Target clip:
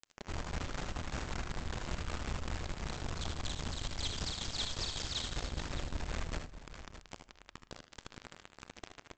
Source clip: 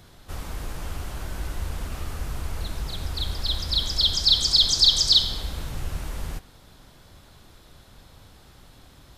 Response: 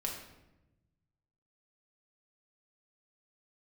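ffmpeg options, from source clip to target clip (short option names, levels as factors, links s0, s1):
-filter_complex "[0:a]lowpass=2100,acompressor=threshold=0.00708:ratio=5,aresample=16000,acrusher=bits=6:mix=0:aa=0.000001,aresample=44100,tremolo=f=5.2:d=0.44,aecho=1:1:66|78|436|614:0.211|0.376|0.126|0.224,asplit=2[s0][s1];[1:a]atrim=start_sample=2205,asetrate=24696,aresample=44100[s2];[s1][s2]afir=irnorm=-1:irlink=0,volume=0.0794[s3];[s0][s3]amix=inputs=2:normalize=0,volume=1.68"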